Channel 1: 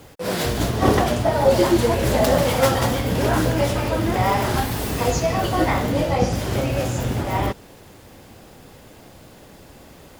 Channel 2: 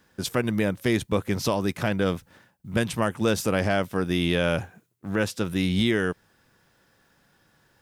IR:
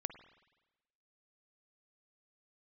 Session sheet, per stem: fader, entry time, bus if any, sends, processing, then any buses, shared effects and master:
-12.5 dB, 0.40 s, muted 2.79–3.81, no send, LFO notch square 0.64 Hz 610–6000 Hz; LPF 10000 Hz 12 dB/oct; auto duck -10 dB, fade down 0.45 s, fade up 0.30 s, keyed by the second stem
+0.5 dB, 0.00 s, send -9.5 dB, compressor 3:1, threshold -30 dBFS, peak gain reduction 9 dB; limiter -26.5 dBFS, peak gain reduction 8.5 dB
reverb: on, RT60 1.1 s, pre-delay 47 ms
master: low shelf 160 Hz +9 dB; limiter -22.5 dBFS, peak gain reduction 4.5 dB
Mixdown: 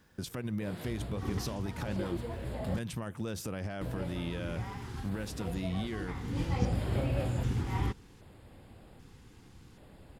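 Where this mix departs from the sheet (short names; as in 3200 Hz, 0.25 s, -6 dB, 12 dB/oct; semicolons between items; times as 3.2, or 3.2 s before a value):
stem 2 +0.5 dB -> -6.0 dB; master: missing limiter -22.5 dBFS, peak gain reduction 4.5 dB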